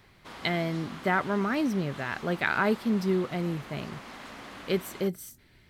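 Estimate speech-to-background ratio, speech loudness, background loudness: 14.5 dB, -29.5 LUFS, -44.0 LUFS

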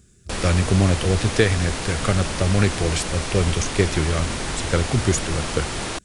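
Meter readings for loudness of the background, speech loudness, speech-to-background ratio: -27.0 LUFS, -22.5 LUFS, 4.5 dB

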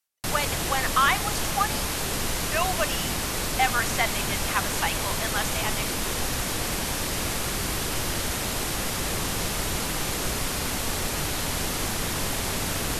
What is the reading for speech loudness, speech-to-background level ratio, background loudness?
-28.0 LUFS, -1.0 dB, -27.0 LUFS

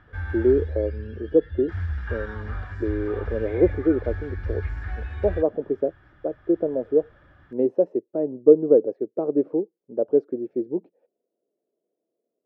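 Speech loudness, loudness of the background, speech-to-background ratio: -24.0 LUFS, -33.0 LUFS, 9.0 dB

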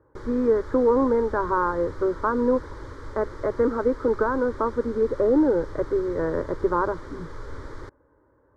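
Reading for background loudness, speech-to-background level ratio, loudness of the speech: -41.0 LUFS, 17.0 dB, -24.0 LUFS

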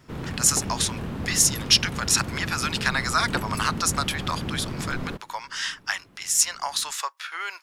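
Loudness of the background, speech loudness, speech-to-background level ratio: -32.5 LUFS, -24.0 LUFS, 8.5 dB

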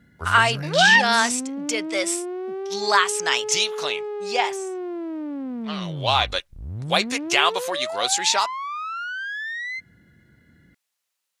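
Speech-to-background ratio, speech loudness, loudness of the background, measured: 10.0 dB, -21.0 LUFS, -31.0 LUFS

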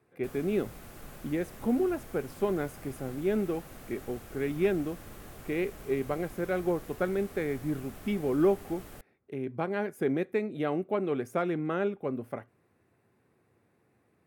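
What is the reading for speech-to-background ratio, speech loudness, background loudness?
16.0 dB, -32.0 LUFS, -48.0 LUFS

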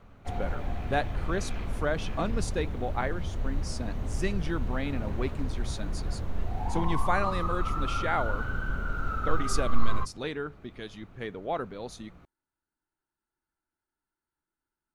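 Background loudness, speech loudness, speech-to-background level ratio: -35.0 LUFS, -34.5 LUFS, 0.5 dB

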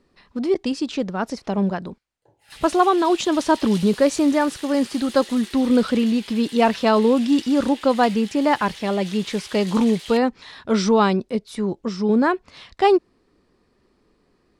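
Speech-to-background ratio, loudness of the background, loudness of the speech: 17.0 dB, -37.5 LUFS, -20.5 LUFS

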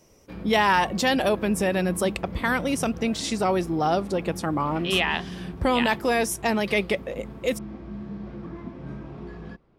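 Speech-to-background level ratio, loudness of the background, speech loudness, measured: 13.5 dB, -38.0 LUFS, -24.5 LUFS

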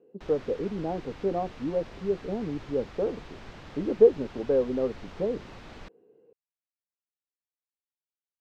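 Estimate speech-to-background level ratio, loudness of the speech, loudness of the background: 18.0 dB, -28.5 LUFS, -46.5 LUFS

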